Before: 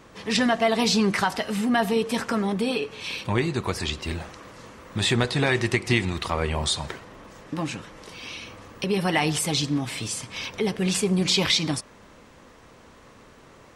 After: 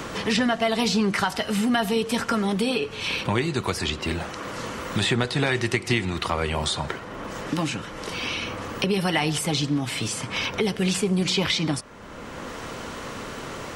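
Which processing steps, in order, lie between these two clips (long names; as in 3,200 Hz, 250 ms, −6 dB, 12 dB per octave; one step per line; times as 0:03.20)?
hollow resonant body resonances 1,400/3,000 Hz, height 7 dB
multiband upward and downward compressor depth 70%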